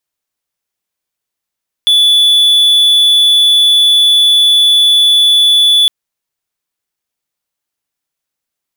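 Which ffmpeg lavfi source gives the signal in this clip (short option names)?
-f lavfi -i "aevalsrc='0.708*(1-4*abs(mod(3450*t+0.25,1)-0.5))':d=4.01:s=44100"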